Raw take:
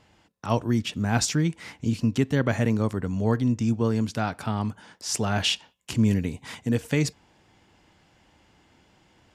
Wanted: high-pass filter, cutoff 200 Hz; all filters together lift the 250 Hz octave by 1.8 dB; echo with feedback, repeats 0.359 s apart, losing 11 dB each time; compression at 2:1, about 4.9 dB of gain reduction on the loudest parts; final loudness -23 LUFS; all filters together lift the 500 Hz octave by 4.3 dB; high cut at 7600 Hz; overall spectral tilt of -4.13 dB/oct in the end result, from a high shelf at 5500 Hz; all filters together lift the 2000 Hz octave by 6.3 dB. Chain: HPF 200 Hz; LPF 7600 Hz; bell 250 Hz +3.5 dB; bell 500 Hz +4 dB; bell 2000 Hz +7.5 dB; high shelf 5500 Hz +4.5 dB; compressor 2:1, threshold -24 dBFS; feedback echo 0.359 s, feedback 28%, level -11 dB; gain +4.5 dB

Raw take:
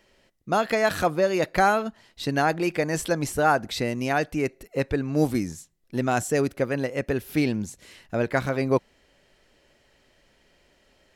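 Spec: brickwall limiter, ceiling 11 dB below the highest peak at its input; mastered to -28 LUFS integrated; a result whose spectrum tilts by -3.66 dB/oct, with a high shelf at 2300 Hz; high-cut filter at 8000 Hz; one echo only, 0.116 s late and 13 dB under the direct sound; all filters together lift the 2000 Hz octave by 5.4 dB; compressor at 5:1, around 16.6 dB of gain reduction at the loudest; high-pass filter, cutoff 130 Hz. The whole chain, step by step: HPF 130 Hz; LPF 8000 Hz; bell 2000 Hz +3.5 dB; high shelf 2300 Hz +7.5 dB; compressor 5:1, threshold -34 dBFS; limiter -30 dBFS; echo 0.116 s -13 dB; gain +13 dB

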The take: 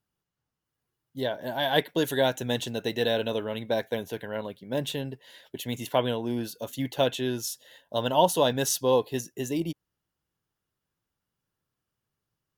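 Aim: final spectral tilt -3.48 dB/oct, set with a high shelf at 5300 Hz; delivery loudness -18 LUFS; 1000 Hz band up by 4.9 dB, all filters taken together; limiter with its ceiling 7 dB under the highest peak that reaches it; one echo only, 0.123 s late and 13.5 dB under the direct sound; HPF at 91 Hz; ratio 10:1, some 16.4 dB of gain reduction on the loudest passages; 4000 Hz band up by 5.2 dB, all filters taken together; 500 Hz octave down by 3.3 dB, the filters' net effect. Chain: HPF 91 Hz; bell 500 Hz -6.5 dB; bell 1000 Hz +8 dB; bell 4000 Hz +7 dB; high shelf 5300 Hz -3 dB; compressor 10:1, threshold -29 dBFS; limiter -22.5 dBFS; echo 0.123 s -13.5 dB; gain +18 dB

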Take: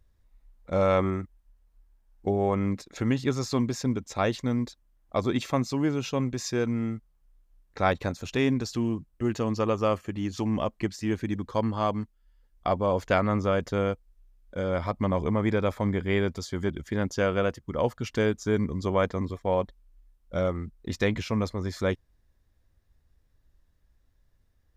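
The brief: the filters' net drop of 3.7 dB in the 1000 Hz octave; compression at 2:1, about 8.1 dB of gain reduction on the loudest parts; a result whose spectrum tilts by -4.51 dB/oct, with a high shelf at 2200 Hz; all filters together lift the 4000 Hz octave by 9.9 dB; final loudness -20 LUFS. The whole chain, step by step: bell 1000 Hz -7.5 dB; high shelf 2200 Hz +8.5 dB; bell 4000 Hz +5 dB; compressor 2:1, threshold -35 dBFS; gain +14.5 dB

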